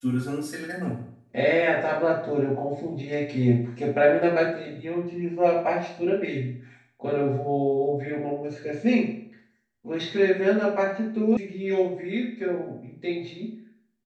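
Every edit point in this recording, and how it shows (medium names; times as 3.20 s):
11.37 s: sound stops dead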